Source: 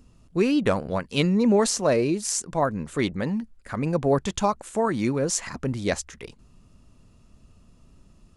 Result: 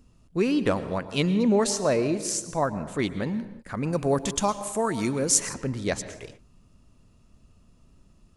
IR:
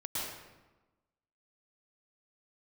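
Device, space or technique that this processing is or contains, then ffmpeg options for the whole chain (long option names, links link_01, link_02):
keyed gated reverb: -filter_complex "[0:a]asplit=3[link_01][link_02][link_03];[1:a]atrim=start_sample=2205[link_04];[link_02][link_04]afir=irnorm=-1:irlink=0[link_05];[link_03]apad=whole_len=368969[link_06];[link_05][link_06]sidechaingate=range=-33dB:threshold=-47dB:ratio=16:detection=peak,volume=-15dB[link_07];[link_01][link_07]amix=inputs=2:normalize=0,asettb=1/sr,asplit=3[link_08][link_09][link_10];[link_08]atrim=end=3.924[link_11];[link_09]atrim=start=3.92:end=5.54,asetpts=PTS-STARTPTS,afade=type=in:duration=0.004:curve=qsin,afade=type=out:start_time=1.616:duration=0.004:curve=qsin,aemphasis=mode=production:type=50fm[link_12];[link_10]atrim=start=5.536[link_13];[link_11][link_12]acrossfade=duration=0.004:curve1=hsin:curve2=qsin[link_14];[link_14][link_13]acrossfade=duration=0.004:curve1=qsin:curve2=hsin,volume=-3dB"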